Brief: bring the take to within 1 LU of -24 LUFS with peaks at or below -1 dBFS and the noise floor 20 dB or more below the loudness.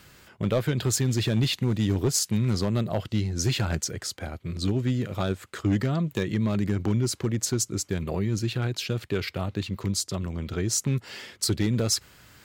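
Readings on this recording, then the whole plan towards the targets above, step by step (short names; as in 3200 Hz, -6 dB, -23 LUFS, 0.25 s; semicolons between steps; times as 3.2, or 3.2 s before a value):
clipped 0.8%; flat tops at -16.5 dBFS; loudness -27.0 LUFS; peak -16.5 dBFS; loudness target -24.0 LUFS
-> clip repair -16.5 dBFS; gain +3 dB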